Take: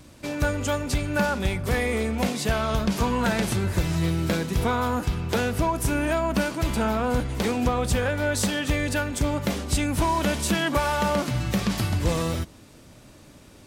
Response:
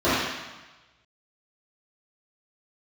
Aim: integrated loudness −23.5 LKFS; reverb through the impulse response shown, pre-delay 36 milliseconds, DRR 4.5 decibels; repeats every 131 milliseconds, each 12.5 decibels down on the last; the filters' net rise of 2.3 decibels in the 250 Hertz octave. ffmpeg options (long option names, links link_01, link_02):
-filter_complex "[0:a]equalizer=frequency=250:width_type=o:gain=3,aecho=1:1:131|262|393:0.237|0.0569|0.0137,asplit=2[link_01][link_02];[1:a]atrim=start_sample=2205,adelay=36[link_03];[link_02][link_03]afir=irnorm=-1:irlink=0,volume=-25.5dB[link_04];[link_01][link_04]amix=inputs=2:normalize=0,volume=-1.5dB"